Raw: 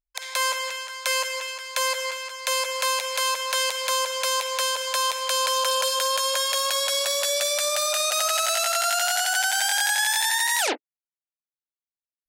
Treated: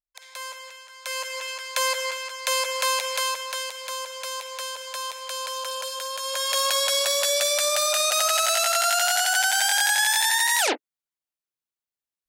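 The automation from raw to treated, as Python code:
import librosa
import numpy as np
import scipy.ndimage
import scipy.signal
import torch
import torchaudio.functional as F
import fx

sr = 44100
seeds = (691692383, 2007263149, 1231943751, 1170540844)

y = fx.gain(x, sr, db=fx.line((0.84, -12.0), (1.53, 0.5), (3.11, 0.5), (3.69, -8.0), (6.16, -8.0), (6.59, 1.5)))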